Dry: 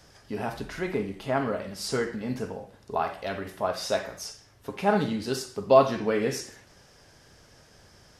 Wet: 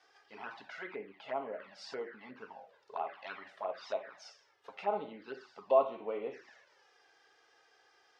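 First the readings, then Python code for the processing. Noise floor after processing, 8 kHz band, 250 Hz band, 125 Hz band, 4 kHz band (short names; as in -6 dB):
-69 dBFS, under -20 dB, -20.0 dB, under -25 dB, -15.5 dB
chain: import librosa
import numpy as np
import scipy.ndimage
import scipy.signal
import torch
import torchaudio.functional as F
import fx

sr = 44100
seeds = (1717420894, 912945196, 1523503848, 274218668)

y = fx.env_flanger(x, sr, rest_ms=2.7, full_db=-22.5)
y = fx.env_lowpass_down(y, sr, base_hz=1700.0, full_db=-27.0)
y = fx.bandpass_edges(y, sr, low_hz=630.0, high_hz=3700.0)
y = F.gain(torch.from_numpy(y), -3.5).numpy()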